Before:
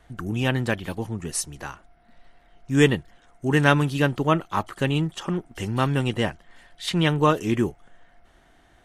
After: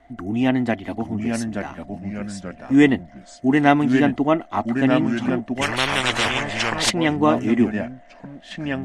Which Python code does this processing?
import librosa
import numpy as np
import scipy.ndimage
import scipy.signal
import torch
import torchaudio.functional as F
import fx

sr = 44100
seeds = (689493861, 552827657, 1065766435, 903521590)

y = fx.peak_eq(x, sr, hz=170.0, db=-10.0, octaves=0.76)
y = fx.small_body(y, sr, hz=(250.0, 690.0, 2000.0), ring_ms=35, db=16)
y = fx.echo_pitch(y, sr, ms=791, semitones=-2, count=2, db_per_echo=-6.0)
y = fx.air_absorb(y, sr, metres=52.0)
y = fx.spectral_comp(y, sr, ratio=10.0, at=(5.61, 6.89), fade=0.02)
y = y * librosa.db_to_amplitude(-3.0)